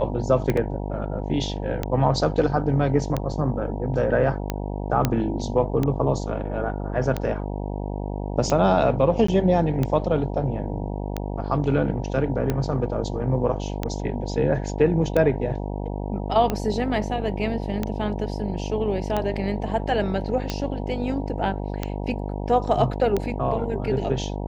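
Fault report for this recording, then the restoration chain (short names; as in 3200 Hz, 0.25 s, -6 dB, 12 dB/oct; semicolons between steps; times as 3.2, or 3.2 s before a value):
buzz 50 Hz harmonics 19 -29 dBFS
tick 45 rpm -11 dBFS
0.57 gap 3.6 ms
5.05 pop -6 dBFS
9.27–9.28 gap 14 ms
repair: de-click; de-hum 50 Hz, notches 19; interpolate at 0.57, 3.6 ms; interpolate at 9.27, 14 ms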